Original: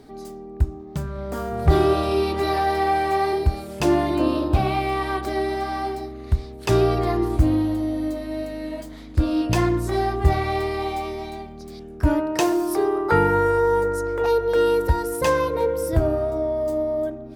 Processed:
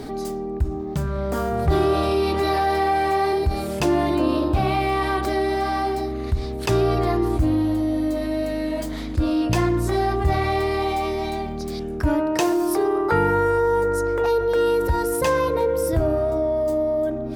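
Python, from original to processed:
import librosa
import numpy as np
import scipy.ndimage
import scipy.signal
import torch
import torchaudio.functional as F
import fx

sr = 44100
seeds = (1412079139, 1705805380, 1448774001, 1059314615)

y = fx.env_flatten(x, sr, amount_pct=50)
y = y * librosa.db_to_amplitude(-4.5)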